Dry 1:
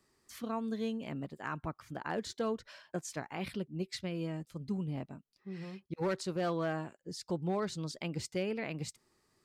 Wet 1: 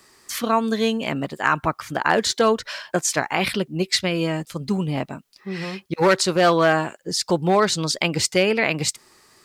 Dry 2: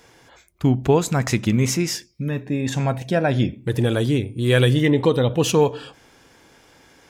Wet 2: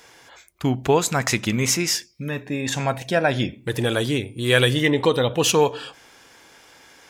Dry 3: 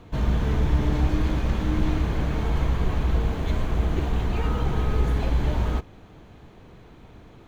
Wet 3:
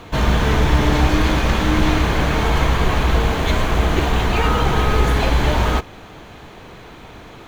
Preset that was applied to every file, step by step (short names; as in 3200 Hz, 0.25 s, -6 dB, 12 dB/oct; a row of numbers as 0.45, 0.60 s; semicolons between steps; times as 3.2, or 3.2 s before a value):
low shelf 460 Hz -11 dB; normalise peaks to -3 dBFS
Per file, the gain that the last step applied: +21.5, +4.5, +16.0 dB